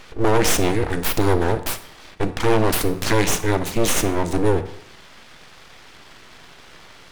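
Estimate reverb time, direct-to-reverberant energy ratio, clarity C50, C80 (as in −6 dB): 0.70 s, 10.5 dB, 13.0 dB, 15.5 dB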